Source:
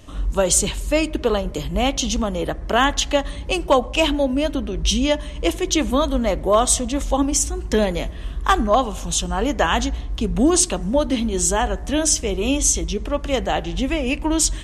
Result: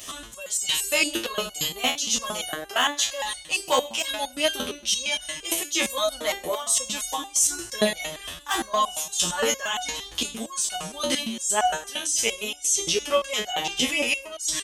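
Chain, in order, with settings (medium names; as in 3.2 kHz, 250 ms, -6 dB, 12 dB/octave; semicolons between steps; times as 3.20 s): tilt EQ +4.5 dB/octave; de-hum 77.68 Hz, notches 13; reverse; compression 16:1, threshold -21 dBFS, peak gain reduction 22 dB; reverse; feedback delay 110 ms, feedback 44%, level -20 dB; loudness maximiser +14.5 dB; resonator arpeggio 8.7 Hz 83–740 Hz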